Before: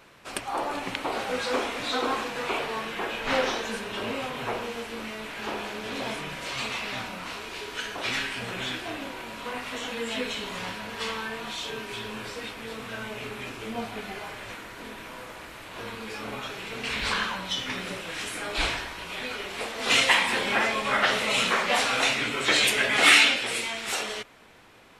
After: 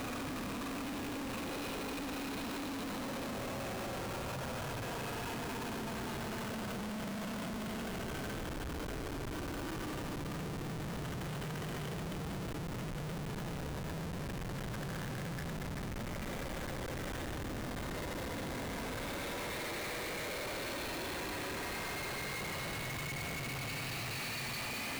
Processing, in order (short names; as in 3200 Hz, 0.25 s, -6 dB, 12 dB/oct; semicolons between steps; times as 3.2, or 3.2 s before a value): reverb removal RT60 0.95 s; in parallel at -1 dB: compressor 10:1, threshold -37 dBFS, peak gain reduction 23 dB; on the sum: flange 0.15 Hz, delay 0.4 ms, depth 1.7 ms, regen +22%; Paulstretch 36×, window 0.05 s, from 5.92; downsampling 11025 Hz; Schmitt trigger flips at -36 dBFS; gain -3.5 dB